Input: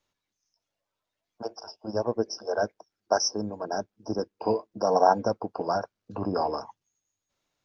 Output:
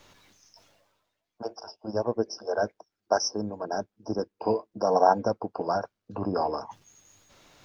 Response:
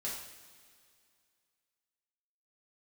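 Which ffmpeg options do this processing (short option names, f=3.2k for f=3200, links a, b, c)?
-af "highshelf=f=5.7k:g=-5,areverse,acompressor=mode=upward:threshold=-37dB:ratio=2.5,areverse"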